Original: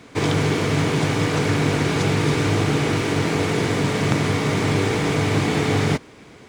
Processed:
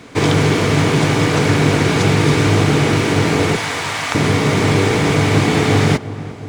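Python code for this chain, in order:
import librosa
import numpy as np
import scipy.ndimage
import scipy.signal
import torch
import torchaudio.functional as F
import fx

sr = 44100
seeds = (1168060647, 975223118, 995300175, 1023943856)

p1 = fx.highpass(x, sr, hz=720.0, slope=24, at=(3.56, 4.15))
p2 = p1 + fx.echo_filtered(p1, sr, ms=353, feedback_pct=67, hz=1300.0, wet_db=-15.0, dry=0)
y = p2 * 10.0 ** (6.0 / 20.0)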